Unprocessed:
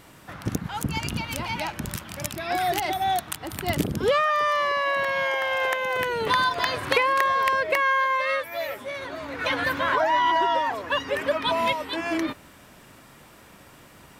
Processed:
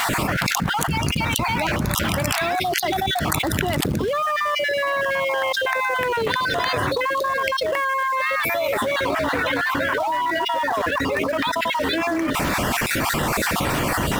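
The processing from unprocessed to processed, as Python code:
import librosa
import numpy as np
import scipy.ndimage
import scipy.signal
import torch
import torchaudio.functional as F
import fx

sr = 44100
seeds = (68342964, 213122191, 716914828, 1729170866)

p1 = fx.spec_dropout(x, sr, seeds[0], share_pct=30)
p2 = fx.high_shelf(p1, sr, hz=4000.0, db=-5.0)
p3 = fx.quant_companded(p2, sr, bits=4)
p4 = p2 + (p3 * 10.0 ** (-7.0 / 20.0))
p5 = fx.env_flatten(p4, sr, amount_pct=100)
y = p5 * 10.0 ** (-7.0 / 20.0)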